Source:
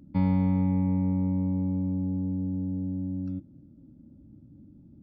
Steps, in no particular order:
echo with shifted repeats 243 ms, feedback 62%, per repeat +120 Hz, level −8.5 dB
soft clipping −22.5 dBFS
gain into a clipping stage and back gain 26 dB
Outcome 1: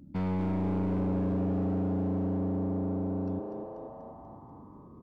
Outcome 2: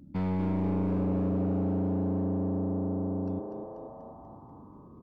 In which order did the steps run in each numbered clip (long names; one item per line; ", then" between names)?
gain into a clipping stage and back, then echo with shifted repeats, then soft clipping
soft clipping, then gain into a clipping stage and back, then echo with shifted repeats